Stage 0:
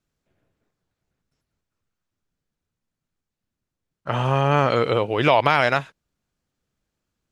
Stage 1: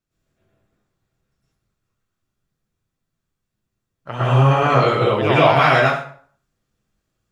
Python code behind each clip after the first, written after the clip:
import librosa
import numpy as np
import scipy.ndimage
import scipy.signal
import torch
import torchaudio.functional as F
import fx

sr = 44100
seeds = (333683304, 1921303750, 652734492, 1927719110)

y = fx.rev_plate(x, sr, seeds[0], rt60_s=0.51, hf_ratio=0.75, predelay_ms=95, drr_db=-9.5)
y = y * librosa.db_to_amplitude(-5.5)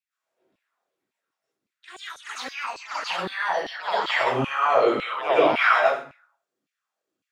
y = fx.filter_lfo_highpass(x, sr, shape='saw_down', hz=1.8, low_hz=220.0, high_hz=2600.0, q=3.5)
y = fx.echo_pitch(y, sr, ms=131, semitones=6, count=3, db_per_echo=-6.0)
y = y * librosa.db_to_amplitude(-8.5)